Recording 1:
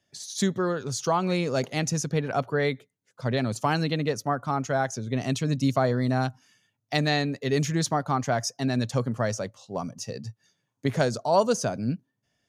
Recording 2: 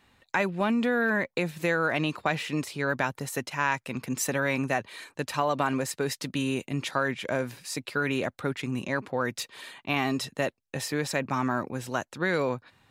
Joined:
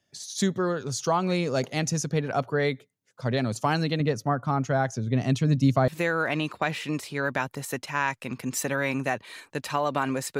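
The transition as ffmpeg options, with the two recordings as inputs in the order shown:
-filter_complex "[0:a]asettb=1/sr,asplit=3[a][b][c];[a]atrim=end=4.004[d];[b]atrim=start=4:end=5.88,asetpts=PTS-STARTPTS,afade=t=in:d=0.004:c=qsin,afade=t=out:st=1.876:d=0.004:c=qsin,bass=f=250:g=5,treble=f=4k:g=-5[e];[c]atrim=start=5.876[f];[d][e]acrossfade=d=0.004:c1=hsin:c2=qsin[g];[g][f]acrossfade=d=0.004:c1=qsin:c2=hsin,apad=whole_dur=10.39,atrim=end=10.39,atrim=end=5.882[h];[1:a]atrim=start=1.518:end=6.03[i];[h][i]acrossfade=d=0.004:c1=hsin:c2=hsin"

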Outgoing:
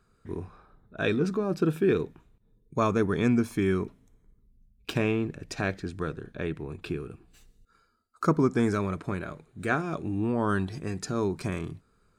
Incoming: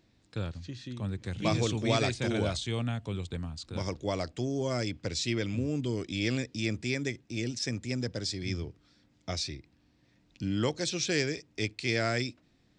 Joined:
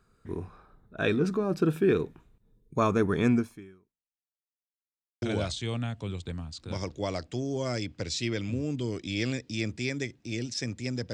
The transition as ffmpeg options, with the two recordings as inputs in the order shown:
-filter_complex "[0:a]apad=whole_dur=11.13,atrim=end=11.13,asplit=2[a][b];[a]atrim=end=4.65,asetpts=PTS-STARTPTS,afade=t=out:st=3.36:d=1.29:c=exp[c];[b]atrim=start=4.65:end=5.22,asetpts=PTS-STARTPTS,volume=0[d];[1:a]atrim=start=2.27:end=8.18,asetpts=PTS-STARTPTS,afade=t=in:d=0.004:c=hsin[e];[c][d][e]concat=n=3:v=0:a=1"

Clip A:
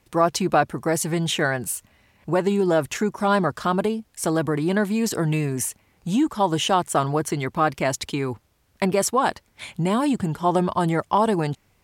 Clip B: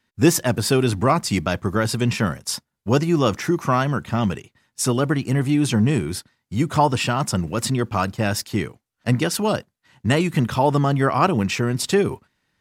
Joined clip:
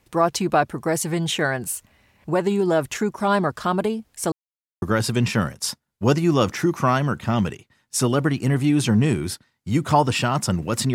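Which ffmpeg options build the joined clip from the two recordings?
-filter_complex "[0:a]apad=whole_dur=10.94,atrim=end=10.94,asplit=2[a][b];[a]atrim=end=4.32,asetpts=PTS-STARTPTS,afade=t=out:st=4.316:d=0.004:c=hsin[c];[b]atrim=start=4.32:end=4.82,asetpts=PTS-STARTPTS,volume=0[d];[1:a]atrim=start=1.67:end=7.79,asetpts=PTS-STARTPTS,afade=t=in:d=0.004:c=hsin[e];[c][d][e]concat=n=3:v=0:a=1"

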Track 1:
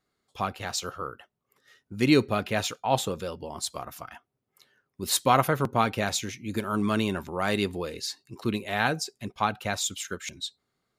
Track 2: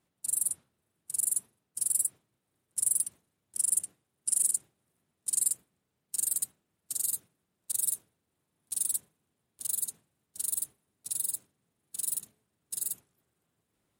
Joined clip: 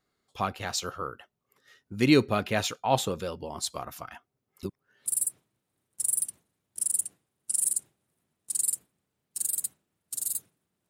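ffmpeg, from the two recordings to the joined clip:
-filter_complex "[0:a]apad=whole_dur=10.89,atrim=end=10.89,asplit=2[a][b];[a]atrim=end=4.632[c];[b]atrim=start=4.628:end=5.062,asetpts=PTS-STARTPTS,areverse[d];[1:a]atrim=start=1.838:end=7.67[e];[c][d]acrossfade=d=0.004:c1=hsin:c2=hsin[f];[f][e]acrossfade=d=0.004:c1=hsin:c2=hsin"

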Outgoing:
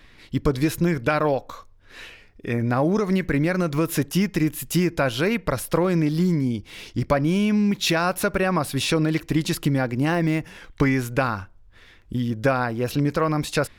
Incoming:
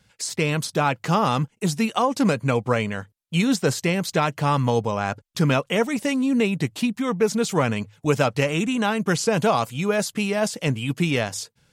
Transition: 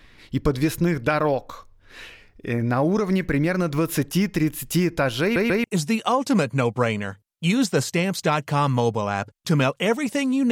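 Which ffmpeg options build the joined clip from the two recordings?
-filter_complex "[0:a]apad=whole_dur=10.51,atrim=end=10.51,asplit=3[a][b][c];[a]atrim=end=5.362[d];[b]atrim=start=5.218:end=5.362[e];[c]atrim=start=5.218:end=5.362[f];[1:a]atrim=start=1.538:end=6.41[g];[d][e]acrossfade=d=0.004:c1=hsin:c2=hsin[h];[h][f]acrossfade=d=0.004:c1=hsin:c2=hsin[i];[i][g]acrossfade=d=0.004:c1=hsin:c2=hsin"

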